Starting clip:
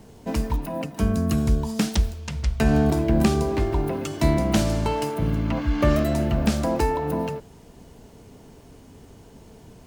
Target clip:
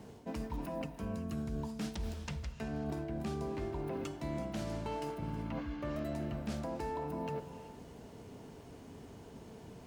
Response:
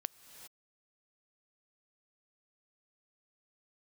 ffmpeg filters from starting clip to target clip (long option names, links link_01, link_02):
-filter_complex "[0:a]highpass=frequency=100:poles=1,highshelf=frequency=5000:gain=-7,areverse,acompressor=threshold=-33dB:ratio=12,areverse[link_01];[1:a]atrim=start_sample=2205,afade=type=out:start_time=0.44:duration=0.01,atrim=end_sample=19845[link_02];[link_01][link_02]afir=irnorm=-1:irlink=0"